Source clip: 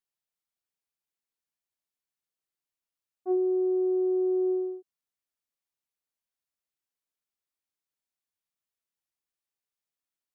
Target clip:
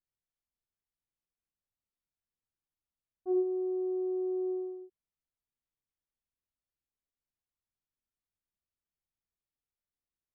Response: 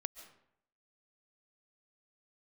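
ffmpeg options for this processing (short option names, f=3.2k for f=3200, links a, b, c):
-filter_complex "[0:a]aemphasis=mode=reproduction:type=riaa,asplit=2[a][b];[1:a]atrim=start_sample=2205,atrim=end_sample=3528,adelay=74[c];[b][c]afir=irnorm=-1:irlink=0,volume=-1dB[d];[a][d]amix=inputs=2:normalize=0,volume=-8dB"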